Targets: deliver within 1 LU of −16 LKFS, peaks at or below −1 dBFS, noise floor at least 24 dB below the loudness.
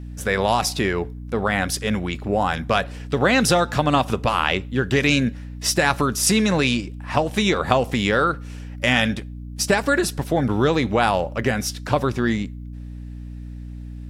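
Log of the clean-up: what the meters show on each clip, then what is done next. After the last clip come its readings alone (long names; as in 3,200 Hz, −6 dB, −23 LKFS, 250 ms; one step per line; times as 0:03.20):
mains hum 60 Hz; hum harmonics up to 300 Hz; level of the hum −31 dBFS; integrated loudness −21.0 LKFS; sample peak −1.5 dBFS; target loudness −16.0 LKFS
→ hum removal 60 Hz, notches 5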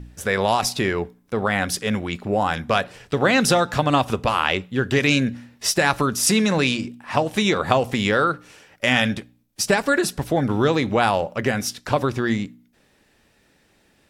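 mains hum none found; integrated loudness −21.0 LKFS; sample peak −1.5 dBFS; target loudness −16.0 LKFS
→ level +5 dB
brickwall limiter −1 dBFS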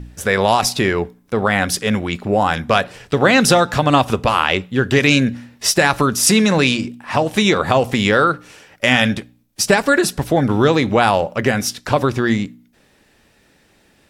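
integrated loudness −16.5 LKFS; sample peak −1.0 dBFS; background noise floor −56 dBFS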